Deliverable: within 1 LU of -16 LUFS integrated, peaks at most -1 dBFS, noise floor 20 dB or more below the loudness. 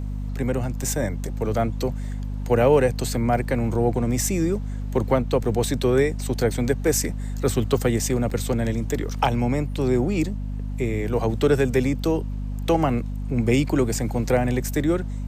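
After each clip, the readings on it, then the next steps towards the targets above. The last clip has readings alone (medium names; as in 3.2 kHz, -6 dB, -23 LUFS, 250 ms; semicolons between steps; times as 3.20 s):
dropouts 3; longest dropout 3.5 ms; hum 50 Hz; highest harmonic 250 Hz; hum level -26 dBFS; loudness -23.5 LUFS; peak level -6.0 dBFS; loudness target -16.0 LUFS
-> interpolate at 0.82/5.44/8.30 s, 3.5 ms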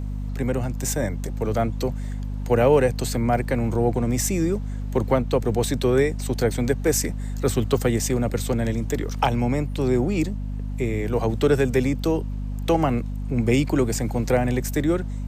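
dropouts 0; hum 50 Hz; highest harmonic 250 Hz; hum level -26 dBFS
-> hum notches 50/100/150/200/250 Hz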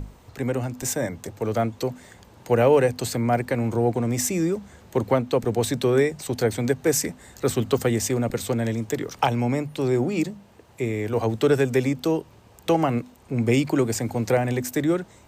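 hum not found; loudness -24.0 LUFS; peak level -6.5 dBFS; loudness target -16.0 LUFS
-> trim +8 dB; peak limiter -1 dBFS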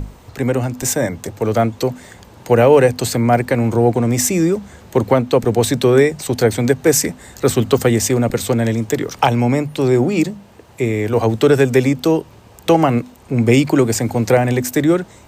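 loudness -16.0 LUFS; peak level -1.0 dBFS; noise floor -44 dBFS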